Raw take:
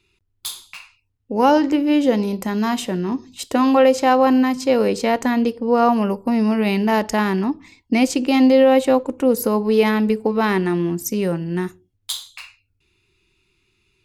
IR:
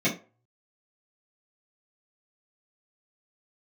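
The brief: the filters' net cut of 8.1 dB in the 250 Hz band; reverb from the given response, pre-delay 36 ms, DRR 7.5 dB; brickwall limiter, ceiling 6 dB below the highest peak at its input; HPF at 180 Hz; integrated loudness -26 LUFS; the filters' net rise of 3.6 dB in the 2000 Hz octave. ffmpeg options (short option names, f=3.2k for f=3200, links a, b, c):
-filter_complex "[0:a]highpass=180,equalizer=f=250:t=o:g=-8,equalizer=f=2k:t=o:g=4.5,alimiter=limit=-9.5dB:level=0:latency=1,asplit=2[a][b];[1:a]atrim=start_sample=2205,adelay=36[c];[b][c]afir=irnorm=-1:irlink=0,volume=-20.5dB[d];[a][d]amix=inputs=2:normalize=0,volume=-5dB"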